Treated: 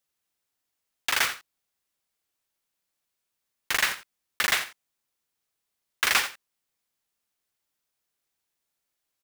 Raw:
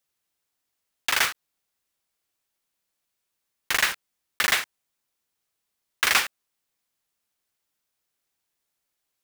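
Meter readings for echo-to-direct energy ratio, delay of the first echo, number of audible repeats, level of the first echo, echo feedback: -14.0 dB, 87 ms, 1, -14.0 dB, no steady repeat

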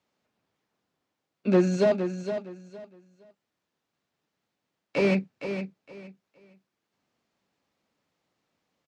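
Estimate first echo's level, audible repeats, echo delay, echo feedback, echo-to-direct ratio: -9.0 dB, 3, 0.463 s, 23%, -9.0 dB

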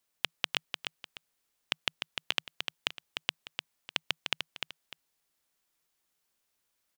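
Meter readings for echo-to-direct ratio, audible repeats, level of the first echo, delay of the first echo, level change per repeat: -5.5 dB, 2, -6.0 dB, 0.3 s, -11.0 dB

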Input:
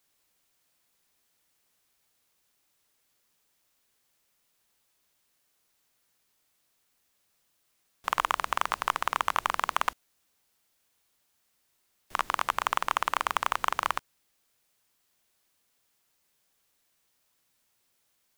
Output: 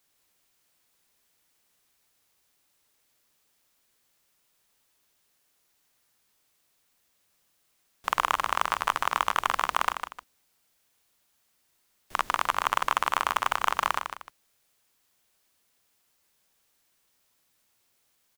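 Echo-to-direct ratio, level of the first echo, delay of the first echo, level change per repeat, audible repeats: -7.5 dB, -8.0 dB, 0.153 s, -9.5 dB, 2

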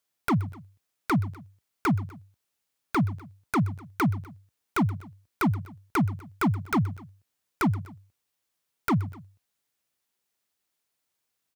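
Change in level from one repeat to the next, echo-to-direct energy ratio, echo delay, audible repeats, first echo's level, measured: -4.5 dB, -18.0 dB, 0.125 s, 2, -19.0 dB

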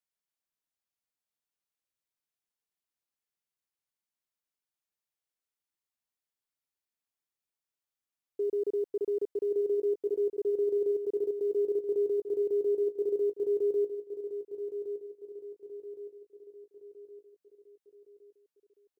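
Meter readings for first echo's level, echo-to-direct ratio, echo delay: -9.5 dB, -8.5 dB, 1.115 s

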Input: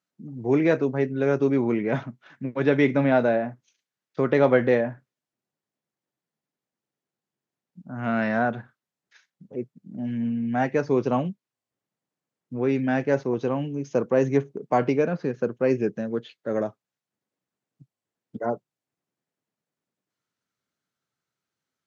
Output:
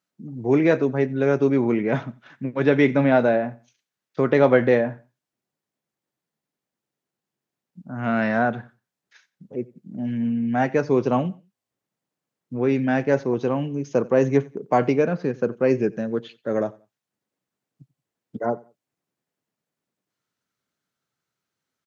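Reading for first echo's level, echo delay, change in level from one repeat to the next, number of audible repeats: -23.0 dB, 90 ms, -11.5 dB, 2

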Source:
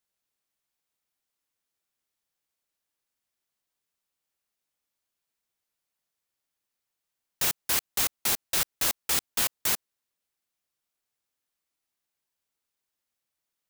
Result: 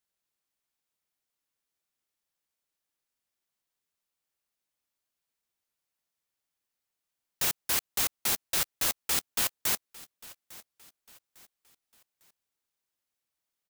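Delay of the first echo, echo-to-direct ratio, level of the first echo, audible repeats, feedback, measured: 0.852 s, -20.0 dB, -20.5 dB, 2, 40%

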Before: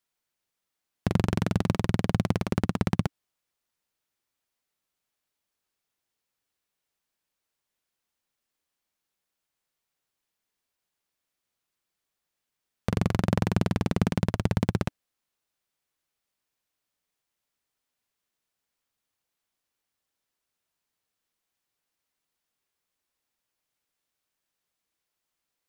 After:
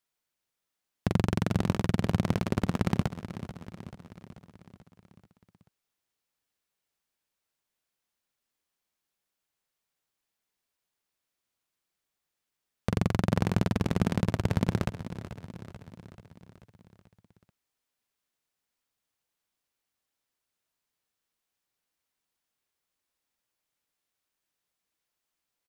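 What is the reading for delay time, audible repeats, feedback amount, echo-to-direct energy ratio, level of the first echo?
0.436 s, 5, 58%, -11.0 dB, -13.0 dB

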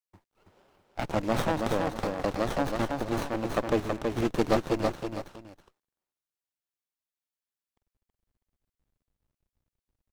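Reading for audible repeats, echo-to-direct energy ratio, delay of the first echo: 2, -3.5 dB, 0.325 s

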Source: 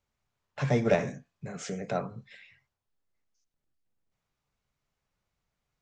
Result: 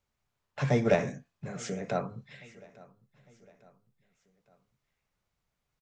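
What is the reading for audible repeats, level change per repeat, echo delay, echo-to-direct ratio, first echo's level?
2, -6.5 dB, 0.854 s, -21.5 dB, -22.5 dB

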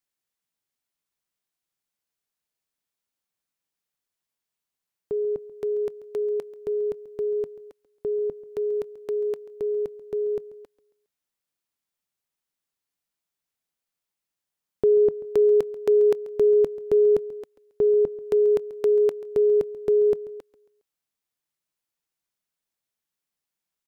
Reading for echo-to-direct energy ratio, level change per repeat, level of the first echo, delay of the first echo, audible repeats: -17.5 dB, -7.5 dB, -18.5 dB, 0.137 s, 3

